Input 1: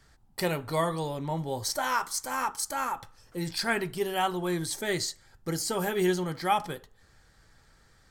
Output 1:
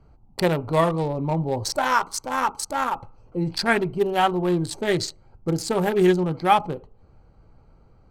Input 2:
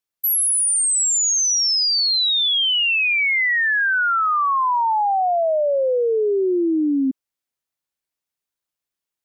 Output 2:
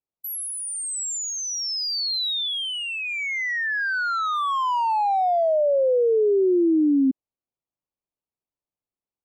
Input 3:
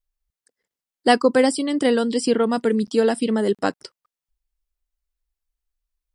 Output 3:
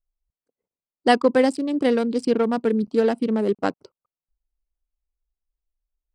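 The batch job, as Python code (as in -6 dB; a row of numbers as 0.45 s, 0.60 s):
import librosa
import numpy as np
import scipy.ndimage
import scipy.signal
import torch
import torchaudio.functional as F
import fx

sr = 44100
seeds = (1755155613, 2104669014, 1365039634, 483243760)

y = fx.wiener(x, sr, points=25)
y = fx.high_shelf(y, sr, hz=7400.0, db=-8.5)
y = y * 10.0 ** (-24 / 20.0) / np.sqrt(np.mean(np.square(y)))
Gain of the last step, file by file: +8.5 dB, +0.5 dB, -0.5 dB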